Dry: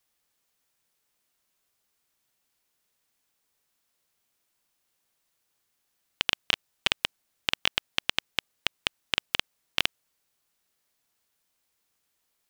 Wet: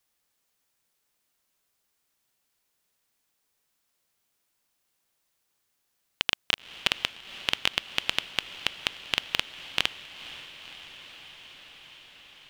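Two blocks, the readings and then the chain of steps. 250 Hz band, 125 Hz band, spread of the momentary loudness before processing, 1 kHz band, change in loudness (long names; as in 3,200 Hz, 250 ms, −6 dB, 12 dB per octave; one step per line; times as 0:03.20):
0.0 dB, +0.5 dB, 7 LU, +0.5 dB, 0.0 dB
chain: feedback delay with all-pass diffusion 502 ms, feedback 78%, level −15.5 dB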